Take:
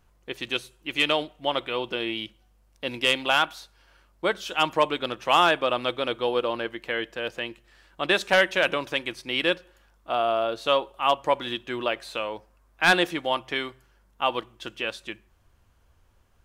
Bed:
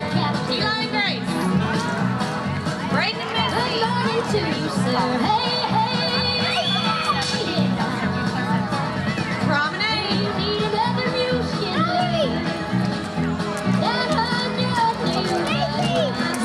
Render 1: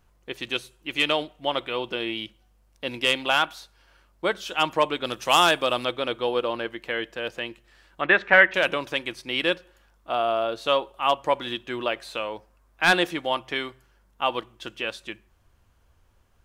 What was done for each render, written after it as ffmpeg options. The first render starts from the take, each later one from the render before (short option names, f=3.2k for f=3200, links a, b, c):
-filter_complex "[0:a]asettb=1/sr,asplit=3[a][b][c];[a]atrim=end=5.064[d];[b]atrim=start=5.06:end=5.85,asetpts=PTS-STARTPTS,afade=t=in:d=0.004:c=qsin,afade=t=out:st=0.786:d=0.004:c=qsin,bass=f=250:g=2,treble=f=4k:g=12[e];[c]atrim=start=5.846[f];[d][e]acrossfade=d=0.004:c1=hsin:c2=qsin[g];[g][f]acrossfade=d=0.004:c1=qsin:c2=hsin,asettb=1/sr,asplit=3[h][i][j];[h]atrim=end=8.014[k];[i]atrim=start=8.01:end=8.54,asetpts=PTS-STARTPTS,afade=t=in:d=0.004:c=qsin,afade=t=out:st=0.526:d=0.004:c=qsin,lowpass=f=1.9k:t=q:w=2.6[l];[j]atrim=start=8.536[m];[k][l]acrossfade=d=0.004:c1=hsin:c2=qsin[n];[n][m]acrossfade=d=0.004:c1=qsin:c2=hsin"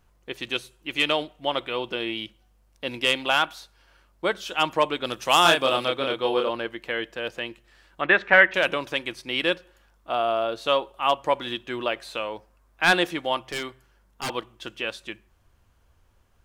-filter_complex "[0:a]asettb=1/sr,asplit=3[a][b][c];[a]atrim=end=5.424[d];[b]atrim=start=5.42:end=6.49,asetpts=PTS-STARTPTS,afade=t=in:d=0.004:c=qsin,afade=t=out:st=1.066:d=0.004:c=qsin,asplit=2[e][f];[f]adelay=30,volume=-2.5dB[g];[e][g]amix=inputs=2:normalize=0,atrim=end_sample=47187[h];[c]atrim=start=6.486[i];[d][h]acrossfade=d=0.004:c1=hsin:c2=qsin[j];[j][i]acrossfade=d=0.004:c1=qsin:c2=hsin,asettb=1/sr,asplit=3[k][l][m];[k]atrim=end=13.524[n];[l]atrim=start=13.52:end=14.3,asetpts=PTS-STARTPTS,afade=t=in:d=0.004:c=qsin,afade=t=out:st=0.776:d=0.004:c=qsin,aeval=exprs='0.0708*(abs(mod(val(0)/0.0708+3,4)-2)-1)':c=same[o];[m]atrim=start=14.296[p];[n][o]acrossfade=d=0.004:c1=hsin:c2=qsin[q];[q][p]acrossfade=d=0.004:c1=qsin:c2=hsin"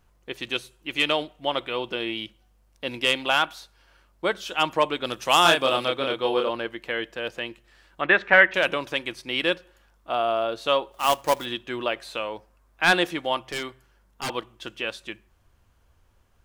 -filter_complex "[0:a]asplit=3[a][b][c];[a]afade=t=out:st=10.91:d=0.02[d];[b]acrusher=bits=2:mode=log:mix=0:aa=0.000001,afade=t=in:st=10.91:d=0.02,afade=t=out:st=11.44:d=0.02[e];[c]afade=t=in:st=11.44:d=0.02[f];[d][e][f]amix=inputs=3:normalize=0"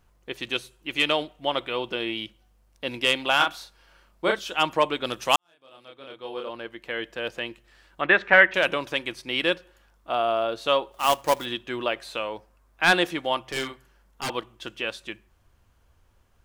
-filter_complex "[0:a]asettb=1/sr,asplit=3[a][b][c];[a]atrim=end=3.364[d];[b]atrim=start=3.36:end=4.39,asetpts=PTS-STARTPTS,afade=t=in:d=0.004:c=qsin,afade=t=out:st=1.026:d=0.004:c=qsin,asplit=2[e][f];[f]adelay=34,volume=-3dB[g];[e][g]amix=inputs=2:normalize=0,atrim=end_sample=45423[h];[c]atrim=start=4.386[i];[d][h]acrossfade=d=0.004:c1=hsin:c2=qsin[j];[j][i]acrossfade=d=0.004:c1=qsin:c2=hsin,asettb=1/sr,asplit=3[k][l][m];[k]atrim=end=13.454[n];[l]atrim=start=13.45:end=14.25,asetpts=PTS-STARTPTS,afade=t=in:d=0.004:c=qsin,afade=t=out:st=0.796:d=0.004:c=qsin,asplit=2[o][p];[p]adelay=45,volume=-5dB[q];[o][q]amix=inputs=2:normalize=0,atrim=end_sample=35280[r];[m]atrim=start=14.246[s];[n][r]acrossfade=d=0.004:c1=hsin:c2=qsin[t];[t][s]acrossfade=d=0.004:c1=qsin:c2=hsin,asplit=2[u][v];[u]atrim=end=5.36,asetpts=PTS-STARTPTS,afade=t=out:st=5.356:d=0.004:c=hsin[w];[v]atrim=start=5.36,asetpts=PTS-STARTPTS,afade=t=in:d=1.84:c=qua[x];[w][x]concat=n=2:v=0:a=1"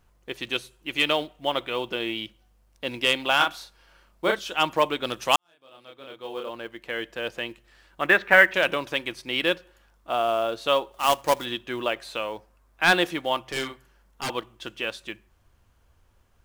-af "acrusher=bits=7:mode=log:mix=0:aa=0.000001"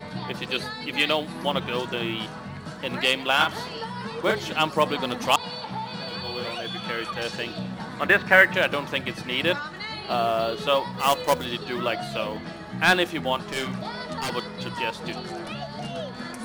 -filter_complex "[1:a]volume=-12.5dB[a];[0:a][a]amix=inputs=2:normalize=0"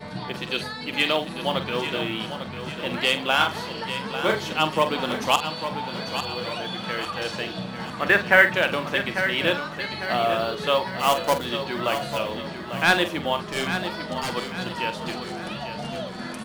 -filter_complex "[0:a]asplit=2[a][b];[b]adelay=45,volume=-10.5dB[c];[a][c]amix=inputs=2:normalize=0,asplit=2[d][e];[e]aecho=0:1:847|1694|2541|3388|4235:0.335|0.151|0.0678|0.0305|0.0137[f];[d][f]amix=inputs=2:normalize=0"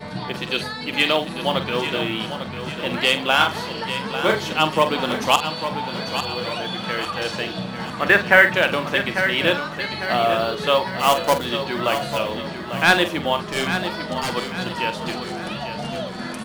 -af "volume=3.5dB,alimiter=limit=-1dB:level=0:latency=1"